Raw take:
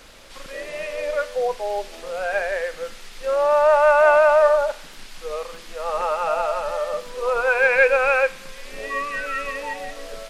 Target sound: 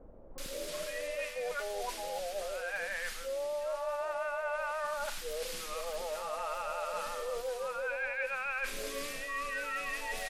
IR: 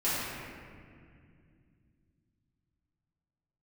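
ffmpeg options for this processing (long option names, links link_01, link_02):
-filter_complex "[0:a]acrossover=split=3100[link_01][link_02];[link_02]acompressor=threshold=-47dB:ratio=4:attack=1:release=60[link_03];[link_01][link_03]amix=inputs=2:normalize=0,crystalizer=i=3.5:c=0,acrossover=split=720[link_04][link_05];[link_05]adelay=380[link_06];[link_04][link_06]amix=inputs=2:normalize=0,areverse,acompressor=threshold=-32dB:ratio=6,areverse,volume=-2.5dB"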